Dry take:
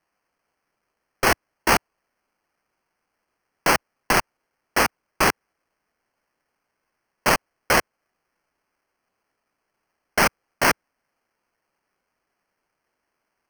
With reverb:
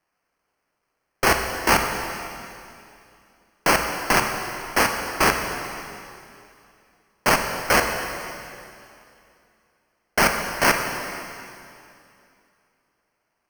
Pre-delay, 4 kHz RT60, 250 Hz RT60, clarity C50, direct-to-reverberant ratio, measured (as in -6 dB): 20 ms, 2.6 s, 2.8 s, 5.0 dB, 4.0 dB